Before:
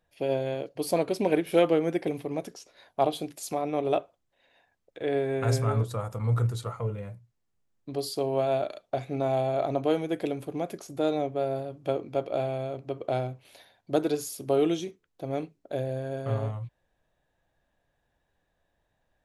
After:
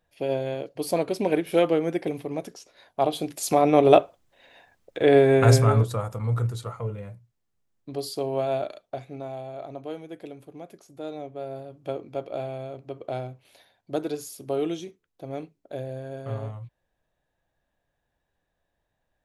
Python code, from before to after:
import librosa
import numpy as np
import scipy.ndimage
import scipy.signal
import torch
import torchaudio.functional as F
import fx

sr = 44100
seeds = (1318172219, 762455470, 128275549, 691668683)

y = fx.gain(x, sr, db=fx.line((3.01, 1.0), (3.62, 11.0), (5.34, 11.0), (6.31, 0.0), (8.66, 0.0), (9.37, -10.0), (10.92, -10.0), (11.9, -3.0)))